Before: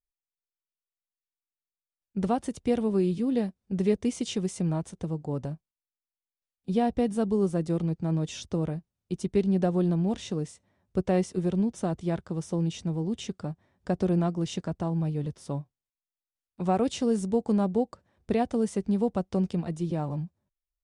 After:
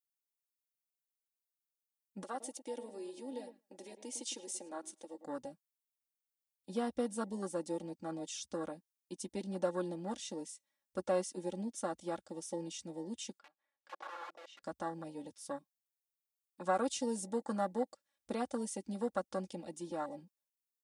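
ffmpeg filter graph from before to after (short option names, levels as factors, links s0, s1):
-filter_complex "[0:a]asettb=1/sr,asplit=3[s0][s1][s2];[s0]atrim=end=2.234[s3];[s1]atrim=start=2.23:end=5.25,asetpts=PTS-STARTPTS,afade=t=in:d=0.004:c=qsin,afade=t=out:st=3.016:d=0.004:c=qsin,acompressor=threshold=0.0282:ratio=2:attack=3.2:release=140:knee=1:detection=peak,highpass=f=290:w=0.5412,highpass=f=290:w=1.3066,asplit=2[s4][s5];[s5]adelay=107,lowpass=f=970:p=1,volume=0.376,asplit=2[s6][s7];[s7]adelay=107,lowpass=f=970:p=1,volume=0.22,asplit=2[s8][s9];[s9]adelay=107,lowpass=f=970:p=1,volume=0.22[s10];[s4][s6][s8][s10]amix=inputs=4:normalize=0,atrim=end_sample=133182[s11];[s2]atrim=start=5.246[s12];[s3][s11]acrossfade=d=0.004:c1=hsin:c2=qsin[s13];[s13][s12]acrossfade=d=0.004:c1=qsin:c2=hsin,asettb=1/sr,asplit=3[s14][s15][s16];[s14]atrim=end=13.394[s17];[s15]atrim=start=13.39:end=14.63,asetpts=PTS-STARTPTS,afade=t=in:d=0.004:c=qsin,afade=t=out:st=1.236:d=0.004:c=qsin,aeval=exprs='(mod(21.1*val(0)+1,2)-1)/21.1':c=same,acompressor=threshold=0.0178:ratio=20:attack=3.2:release=140:knee=1:detection=peak,highpass=390,lowpass=2100[s18];[s16]atrim=start=14.626[s19];[s17][s18]acrossfade=d=0.004:c1=hsin:c2=qsin[s20];[s20][s19]acrossfade=d=0.004:c1=qsin:c2=hsin,afwtdn=0.0141,aderivative,aecho=1:1:3.6:0.8,volume=5.01"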